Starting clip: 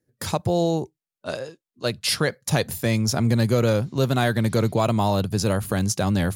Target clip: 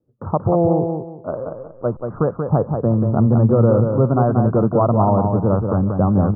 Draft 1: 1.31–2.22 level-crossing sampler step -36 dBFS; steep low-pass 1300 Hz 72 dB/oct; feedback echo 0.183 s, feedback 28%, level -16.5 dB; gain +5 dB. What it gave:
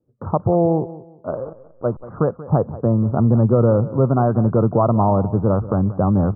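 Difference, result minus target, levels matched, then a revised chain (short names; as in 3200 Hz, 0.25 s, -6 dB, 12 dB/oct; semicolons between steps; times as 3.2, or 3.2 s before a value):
echo-to-direct -11 dB
1.31–2.22 level-crossing sampler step -36 dBFS; steep low-pass 1300 Hz 72 dB/oct; feedback echo 0.183 s, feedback 28%, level -5.5 dB; gain +5 dB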